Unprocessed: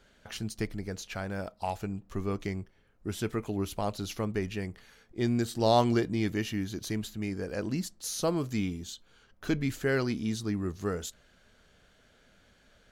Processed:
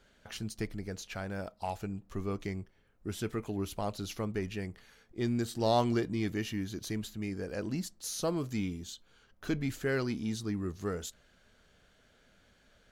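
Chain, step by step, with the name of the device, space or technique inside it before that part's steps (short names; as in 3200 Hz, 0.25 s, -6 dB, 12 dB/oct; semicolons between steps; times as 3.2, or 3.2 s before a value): parallel distortion (in parallel at -12 dB: hard clip -29.5 dBFS, distortion -7 dB); on the sum: gain -4.5 dB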